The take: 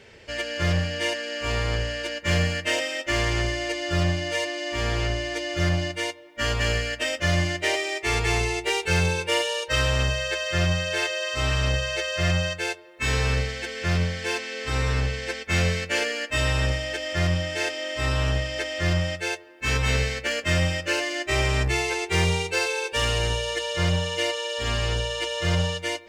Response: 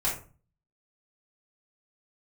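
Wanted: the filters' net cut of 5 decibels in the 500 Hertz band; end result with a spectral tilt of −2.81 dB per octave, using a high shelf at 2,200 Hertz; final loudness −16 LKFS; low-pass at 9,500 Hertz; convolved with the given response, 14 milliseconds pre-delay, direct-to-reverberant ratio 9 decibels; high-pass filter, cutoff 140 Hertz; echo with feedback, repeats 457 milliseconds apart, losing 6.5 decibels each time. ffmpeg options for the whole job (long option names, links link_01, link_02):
-filter_complex "[0:a]highpass=140,lowpass=9500,equalizer=frequency=500:width_type=o:gain=-6.5,highshelf=frequency=2200:gain=3.5,aecho=1:1:457|914|1371|1828|2285|2742:0.473|0.222|0.105|0.0491|0.0231|0.0109,asplit=2[link_01][link_02];[1:a]atrim=start_sample=2205,adelay=14[link_03];[link_02][link_03]afir=irnorm=-1:irlink=0,volume=-17.5dB[link_04];[link_01][link_04]amix=inputs=2:normalize=0,volume=7.5dB"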